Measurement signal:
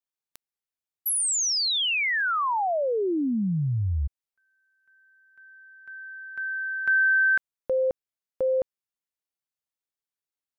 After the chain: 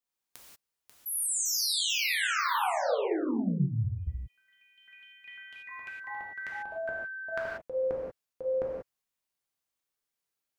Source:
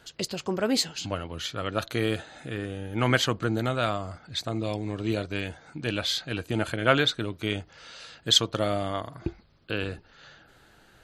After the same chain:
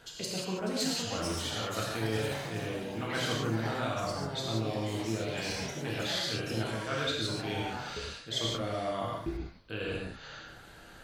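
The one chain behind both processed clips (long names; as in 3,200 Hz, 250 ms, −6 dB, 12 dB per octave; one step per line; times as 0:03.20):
reversed playback
downward compressor 4 to 1, threshold −37 dBFS
reversed playback
reverb whose tail is shaped and stops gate 210 ms flat, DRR −4 dB
delay with pitch and tempo change per echo 613 ms, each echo +4 semitones, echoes 3, each echo −6 dB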